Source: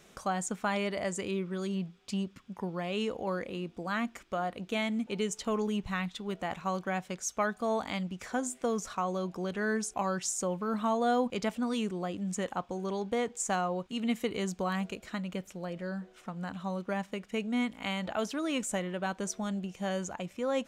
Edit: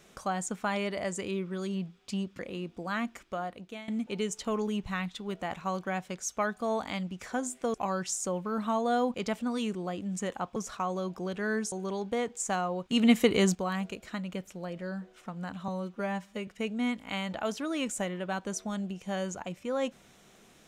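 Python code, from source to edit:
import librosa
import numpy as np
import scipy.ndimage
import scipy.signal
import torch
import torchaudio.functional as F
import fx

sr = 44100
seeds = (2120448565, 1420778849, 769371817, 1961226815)

y = fx.edit(x, sr, fx.cut(start_s=2.39, length_s=1.0),
    fx.fade_out_to(start_s=3.99, length_s=0.89, curve='qsin', floor_db=-17.5),
    fx.move(start_s=8.74, length_s=1.16, to_s=12.72),
    fx.clip_gain(start_s=13.91, length_s=0.64, db=9.0),
    fx.stretch_span(start_s=16.68, length_s=0.53, factor=1.5), tone=tone)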